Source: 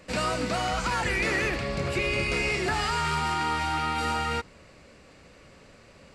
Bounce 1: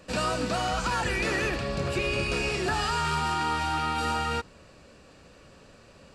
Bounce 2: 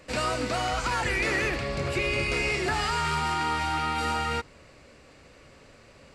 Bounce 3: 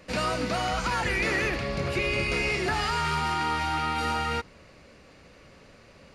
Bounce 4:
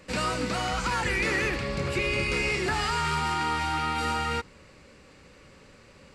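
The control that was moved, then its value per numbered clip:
notch, frequency: 2100, 190, 7800, 670 Hz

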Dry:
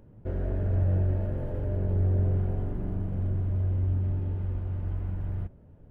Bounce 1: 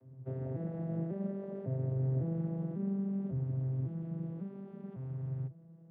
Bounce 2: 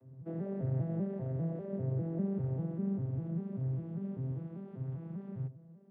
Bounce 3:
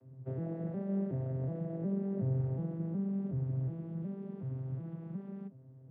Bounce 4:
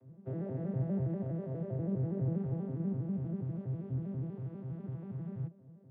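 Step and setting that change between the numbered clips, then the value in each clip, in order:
arpeggiated vocoder, a note every: 550, 198, 367, 81 ms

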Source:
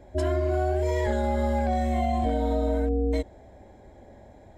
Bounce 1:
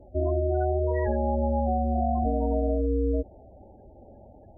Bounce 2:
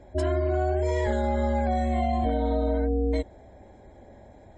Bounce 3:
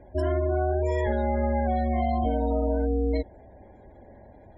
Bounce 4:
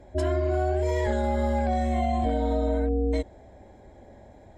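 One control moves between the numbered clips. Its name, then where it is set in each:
spectral gate, under each frame's peak: -15, -45, -30, -55 dB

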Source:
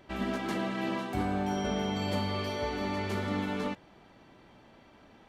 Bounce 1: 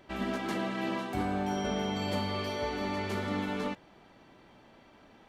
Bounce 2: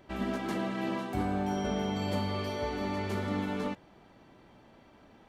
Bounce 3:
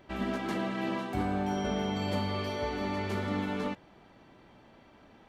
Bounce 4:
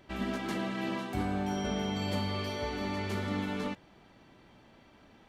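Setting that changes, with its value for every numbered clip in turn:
bell, frequency: 71, 3100, 12000, 700 Hz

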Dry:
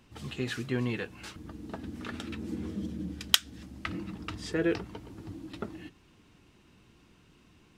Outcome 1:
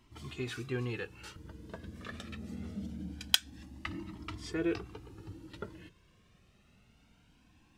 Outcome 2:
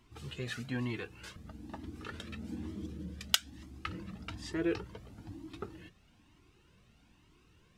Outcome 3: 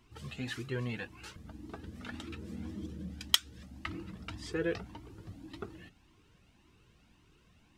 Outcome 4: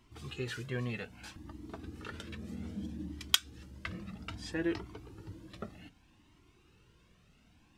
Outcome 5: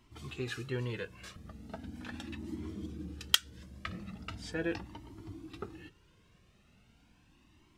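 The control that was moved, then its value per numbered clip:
cascading flanger, rate: 0.24, 1.1, 1.8, 0.63, 0.39 Hz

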